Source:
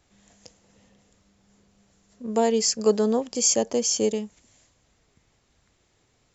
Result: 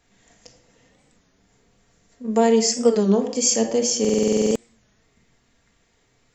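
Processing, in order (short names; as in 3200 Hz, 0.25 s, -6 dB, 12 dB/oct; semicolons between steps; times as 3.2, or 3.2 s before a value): bell 1900 Hz +4.5 dB 0.51 oct; notches 50/100/150/200 Hz; on a send at -2 dB: reverb RT60 0.70 s, pre-delay 4 ms; on the sum: stuck buffer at 4, samples 2048, times 11; record warp 33 1/3 rpm, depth 160 cents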